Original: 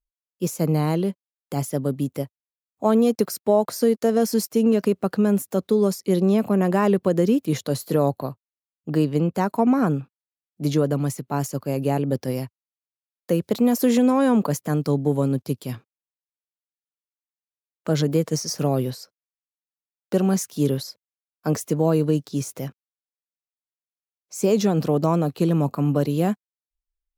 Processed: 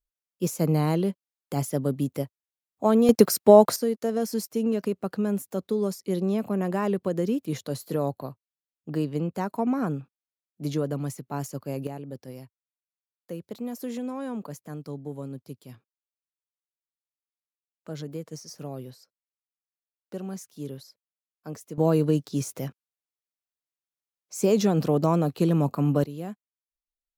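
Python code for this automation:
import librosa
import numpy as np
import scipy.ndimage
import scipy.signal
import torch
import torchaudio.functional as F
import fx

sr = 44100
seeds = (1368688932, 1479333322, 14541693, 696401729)

y = fx.gain(x, sr, db=fx.steps((0.0, -2.0), (3.09, 5.0), (3.76, -7.0), (11.87, -15.0), (21.78, -2.0), (26.04, -14.0)))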